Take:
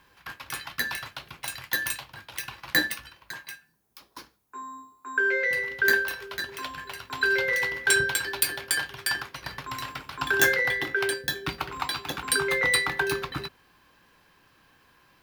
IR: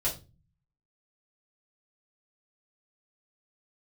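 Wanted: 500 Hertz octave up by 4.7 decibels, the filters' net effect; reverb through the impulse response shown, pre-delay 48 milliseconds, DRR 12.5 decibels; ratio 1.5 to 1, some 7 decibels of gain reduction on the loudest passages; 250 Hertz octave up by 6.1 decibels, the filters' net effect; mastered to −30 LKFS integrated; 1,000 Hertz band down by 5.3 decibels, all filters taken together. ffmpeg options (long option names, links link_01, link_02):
-filter_complex "[0:a]equalizer=frequency=250:width_type=o:gain=7.5,equalizer=frequency=500:width_type=o:gain=4.5,equalizer=frequency=1000:width_type=o:gain=-8,acompressor=threshold=-37dB:ratio=1.5,asplit=2[link_01][link_02];[1:a]atrim=start_sample=2205,adelay=48[link_03];[link_02][link_03]afir=irnorm=-1:irlink=0,volume=-18.5dB[link_04];[link_01][link_04]amix=inputs=2:normalize=0,volume=2.5dB"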